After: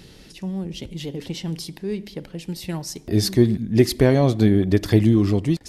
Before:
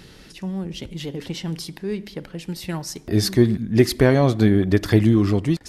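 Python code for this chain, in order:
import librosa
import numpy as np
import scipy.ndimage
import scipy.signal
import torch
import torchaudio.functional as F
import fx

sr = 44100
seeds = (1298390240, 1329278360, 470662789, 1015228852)

y = fx.peak_eq(x, sr, hz=1400.0, db=-6.0, octaves=1.1)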